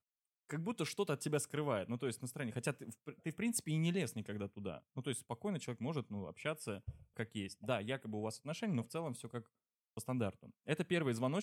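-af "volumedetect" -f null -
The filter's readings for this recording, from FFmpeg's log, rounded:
mean_volume: -40.7 dB
max_volume: -21.2 dB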